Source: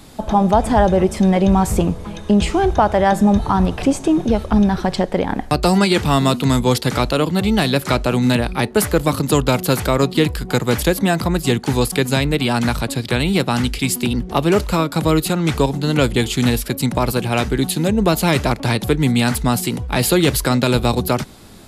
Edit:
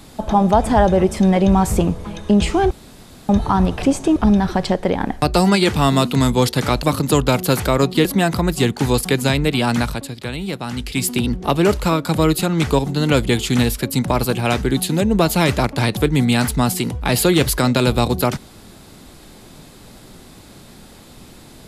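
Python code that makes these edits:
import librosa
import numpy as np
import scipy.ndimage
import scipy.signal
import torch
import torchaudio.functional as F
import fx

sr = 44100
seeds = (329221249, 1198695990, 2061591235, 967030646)

y = fx.edit(x, sr, fx.room_tone_fill(start_s=2.71, length_s=0.58),
    fx.cut(start_s=4.16, length_s=0.29),
    fx.cut(start_s=7.12, length_s=1.91),
    fx.cut(start_s=10.25, length_s=0.67),
    fx.fade_down_up(start_s=12.63, length_s=1.32, db=-8.5, fade_s=0.35), tone=tone)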